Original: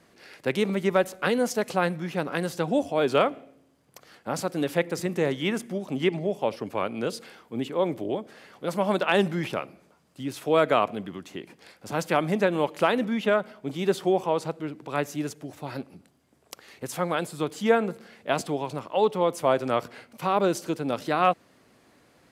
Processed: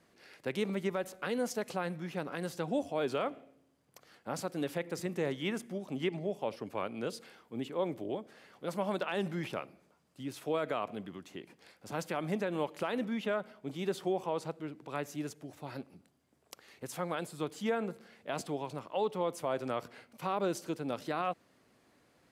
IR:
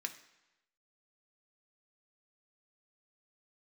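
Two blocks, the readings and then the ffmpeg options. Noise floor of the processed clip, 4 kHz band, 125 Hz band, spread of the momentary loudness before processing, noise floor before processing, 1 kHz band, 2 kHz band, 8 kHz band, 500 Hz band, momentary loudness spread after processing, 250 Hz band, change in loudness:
-69 dBFS, -9.5 dB, -8.5 dB, 14 LU, -61 dBFS, -11.0 dB, -11.0 dB, -8.0 dB, -10.0 dB, 12 LU, -8.5 dB, -10.0 dB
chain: -af "alimiter=limit=-14.5dB:level=0:latency=1:release=65,volume=-8dB"

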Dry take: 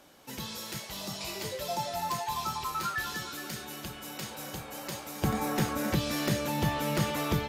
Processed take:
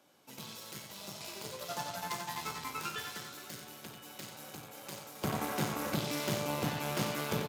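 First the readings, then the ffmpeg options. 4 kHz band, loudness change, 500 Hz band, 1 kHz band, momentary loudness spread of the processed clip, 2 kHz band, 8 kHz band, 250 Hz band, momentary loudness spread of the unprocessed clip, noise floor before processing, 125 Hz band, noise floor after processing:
-4.5 dB, -5.0 dB, -4.0 dB, -6.0 dB, 12 LU, -4.5 dB, -3.5 dB, -6.0 dB, 10 LU, -45 dBFS, -6.5 dB, -52 dBFS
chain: -af "aeval=exprs='0.168*(cos(1*acos(clip(val(0)/0.168,-1,1)))-cos(1*PI/2))+0.0422*(cos(6*acos(clip(val(0)/0.168,-1,1)))-cos(6*PI/2))+0.0075*(cos(7*acos(clip(val(0)/0.168,-1,1)))-cos(7*PI/2))':c=same,highpass=f=96:w=0.5412,highpass=f=96:w=1.3066,bandreject=f=1.8k:w=14,aecho=1:1:52.48|90.38:0.282|0.447,volume=-6.5dB"

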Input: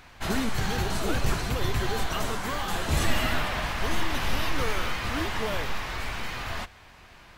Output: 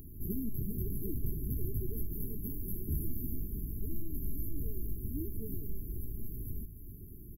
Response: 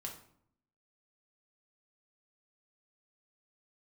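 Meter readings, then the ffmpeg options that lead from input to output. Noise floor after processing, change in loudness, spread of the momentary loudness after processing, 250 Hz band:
-48 dBFS, -10.5 dB, 6 LU, -7.5 dB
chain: -filter_complex "[0:a]bass=f=250:g=1,treble=f=4k:g=11,acompressor=threshold=-44dB:ratio=2.5,equalizer=f=460:w=5.5:g=-10.5,afftfilt=real='re*(1-between(b*sr/4096,470,11000))':imag='im*(1-between(b*sr/4096,470,11000))':win_size=4096:overlap=0.75,asplit=5[a][b][c][d][e];[b]adelay=309,afreqshift=-52,volume=-11dB[f];[c]adelay=618,afreqshift=-104,volume=-19.4dB[g];[d]adelay=927,afreqshift=-156,volume=-27.8dB[h];[e]adelay=1236,afreqshift=-208,volume=-36.2dB[i];[a][f][g][h][i]amix=inputs=5:normalize=0,volume=6.5dB"

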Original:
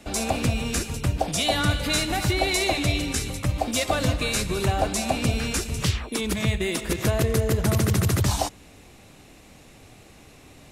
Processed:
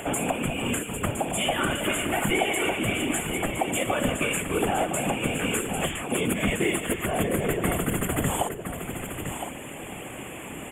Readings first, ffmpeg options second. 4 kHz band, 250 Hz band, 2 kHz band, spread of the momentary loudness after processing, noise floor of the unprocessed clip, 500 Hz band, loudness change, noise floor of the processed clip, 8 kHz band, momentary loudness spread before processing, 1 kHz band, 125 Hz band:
-4.5 dB, 0.0 dB, +1.0 dB, 10 LU, -50 dBFS, 0.0 dB, -2.5 dB, -38 dBFS, -1.5 dB, 5 LU, 0.0 dB, -7.5 dB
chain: -filter_complex "[0:a]highpass=170,asplit=2[a][b];[b]acompressor=mode=upward:threshold=-27dB:ratio=2.5,volume=-1.5dB[c];[a][c]amix=inputs=2:normalize=0,alimiter=limit=-14.5dB:level=0:latency=1:release=373,afftfilt=real='hypot(re,im)*cos(2*PI*random(0))':imag='hypot(re,im)*sin(2*PI*random(1))':win_size=512:overlap=0.75,asuperstop=centerf=4900:order=20:qfactor=1.4,aecho=1:1:1013:0.398,volume=6.5dB"

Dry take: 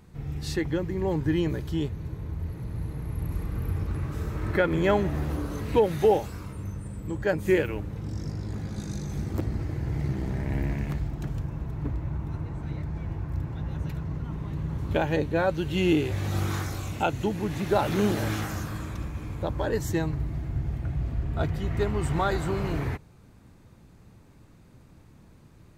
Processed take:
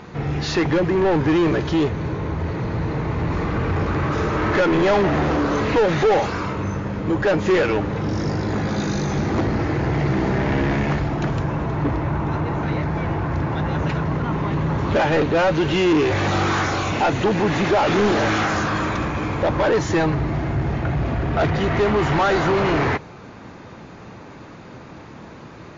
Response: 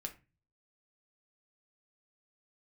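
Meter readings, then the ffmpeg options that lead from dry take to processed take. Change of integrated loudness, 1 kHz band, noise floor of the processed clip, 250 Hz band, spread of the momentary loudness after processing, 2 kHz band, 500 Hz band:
+8.5 dB, +11.5 dB, -40 dBFS, +9.0 dB, 9 LU, +11.5 dB, +8.5 dB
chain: -filter_complex "[0:a]asplit=2[a][b];[b]highpass=f=720:p=1,volume=31dB,asoftclip=type=tanh:threshold=-10dB[c];[a][c]amix=inputs=2:normalize=0,lowpass=f=1.5k:p=1,volume=-6dB,volume=1dB" -ar 16000 -c:a libmp3lame -b:a 40k

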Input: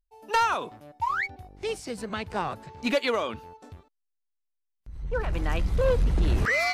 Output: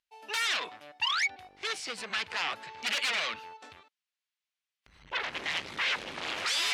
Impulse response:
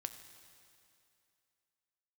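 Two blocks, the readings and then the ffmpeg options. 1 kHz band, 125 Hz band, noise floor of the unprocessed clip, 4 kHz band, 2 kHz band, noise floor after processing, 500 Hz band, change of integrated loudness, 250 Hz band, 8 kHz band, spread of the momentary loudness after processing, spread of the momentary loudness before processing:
-8.0 dB, -27.5 dB, -79 dBFS, +7.5 dB, -0.5 dB, under -85 dBFS, -15.5 dB, -3.0 dB, -16.5 dB, +5.0 dB, 9 LU, 10 LU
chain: -af "aeval=exprs='0.158*sin(PI/2*4.47*val(0)/0.158)':c=same,bandpass=f=2.7k:t=q:w=1.1:csg=0,volume=-5.5dB"

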